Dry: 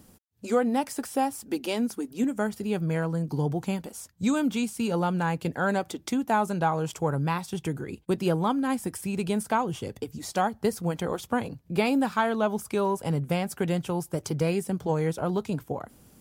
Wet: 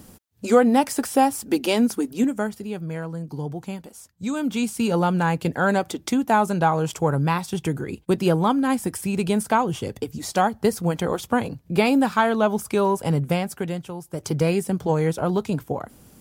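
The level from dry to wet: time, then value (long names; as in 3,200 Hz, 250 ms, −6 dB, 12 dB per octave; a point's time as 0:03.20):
0:02.07 +8 dB
0:02.75 −3 dB
0:04.25 −3 dB
0:04.69 +5.5 dB
0:13.27 +5.5 dB
0:14.01 −6 dB
0:14.31 +5 dB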